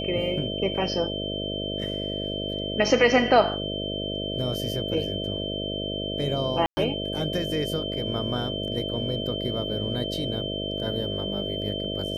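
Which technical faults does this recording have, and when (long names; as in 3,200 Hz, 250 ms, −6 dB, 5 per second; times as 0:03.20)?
mains buzz 50 Hz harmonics 13 −32 dBFS
whistle 3,100 Hz −32 dBFS
0:06.66–0:06.77: drop-out 110 ms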